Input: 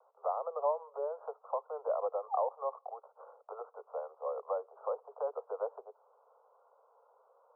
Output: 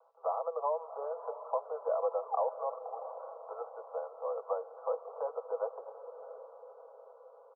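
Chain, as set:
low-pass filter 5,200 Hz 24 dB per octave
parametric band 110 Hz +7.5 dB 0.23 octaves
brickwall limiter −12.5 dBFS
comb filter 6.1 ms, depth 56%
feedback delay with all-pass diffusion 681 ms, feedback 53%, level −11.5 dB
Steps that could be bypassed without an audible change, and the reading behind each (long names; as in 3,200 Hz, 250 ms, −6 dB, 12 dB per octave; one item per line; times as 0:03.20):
low-pass filter 5,200 Hz: nothing at its input above 1,400 Hz
parametric band 110 Hz: nothing at its input below 360 Hz
brickwall limiter −12.5 dBFS: peak of its input −19.5 dBFS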